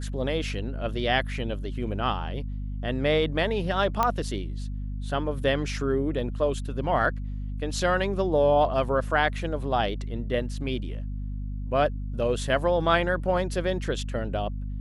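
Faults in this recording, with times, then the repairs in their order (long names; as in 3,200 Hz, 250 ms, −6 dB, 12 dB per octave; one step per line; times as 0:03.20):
mains hum 50 Hz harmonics 5 −32 dBFS
0:04.03: click −10 dBFS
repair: click removal
hum removal 50 Hz, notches 5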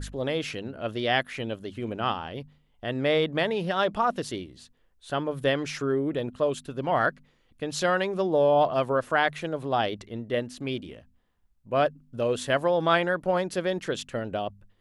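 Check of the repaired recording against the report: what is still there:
none of them is left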